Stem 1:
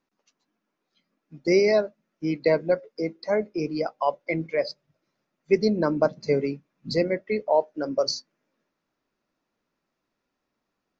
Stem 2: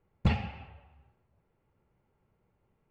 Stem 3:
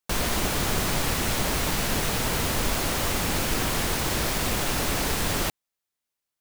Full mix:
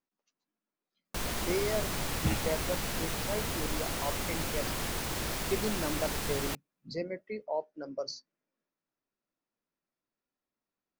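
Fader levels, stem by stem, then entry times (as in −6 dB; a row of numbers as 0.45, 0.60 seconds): −12.5, −5.0, −8.5 decibels; 0.00, 2.00, 1.05 seconds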